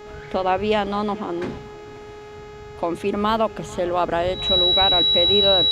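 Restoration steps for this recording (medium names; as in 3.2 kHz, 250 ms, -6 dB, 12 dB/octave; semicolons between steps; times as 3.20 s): de-hum 418.8 Hz, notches 18; band-stop 3.9 kHz, Q 30; inverse comb 447 ms -22 dB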